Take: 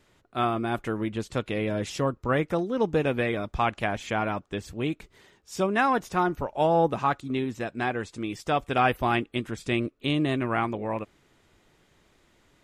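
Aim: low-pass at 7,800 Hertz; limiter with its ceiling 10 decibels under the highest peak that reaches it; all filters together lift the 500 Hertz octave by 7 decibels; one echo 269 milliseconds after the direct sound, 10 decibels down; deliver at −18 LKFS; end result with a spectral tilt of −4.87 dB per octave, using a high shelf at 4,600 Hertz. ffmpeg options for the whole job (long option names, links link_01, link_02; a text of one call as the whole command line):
ffmpeg -i in.wav -af "lowpass=7800,equalizer=frequency=500:width_type=o:gain=8.5,highshelf=frequency=4600:gain=6.5,alimiter=limit=-16dB:level=0:latency=1,aecho=1:1:269:0.316,volume=8.5dB" out.wav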